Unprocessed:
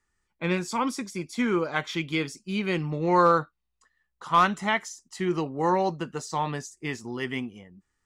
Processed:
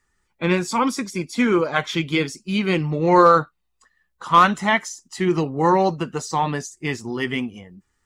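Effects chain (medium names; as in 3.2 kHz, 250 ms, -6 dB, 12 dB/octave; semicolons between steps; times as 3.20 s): coarse spectral quantiser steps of 15 dB; trim +7 dB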